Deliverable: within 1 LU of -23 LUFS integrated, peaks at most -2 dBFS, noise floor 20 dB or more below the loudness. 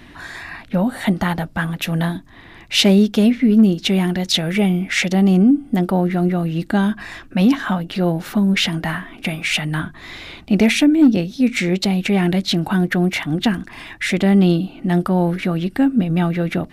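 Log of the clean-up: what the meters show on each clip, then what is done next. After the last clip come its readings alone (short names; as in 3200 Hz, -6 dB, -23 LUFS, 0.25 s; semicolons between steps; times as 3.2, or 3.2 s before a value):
loudness -17.5 LUFS; peak -4.5 dBFS; loudness target -23.0 LUFS
-> gain -5.5 dB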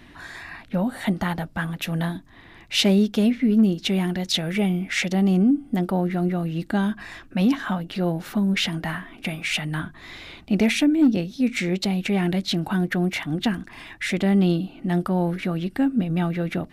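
loudness -23.0 LUFS; peak -10.0 dBFS; noise floor -48 dBFS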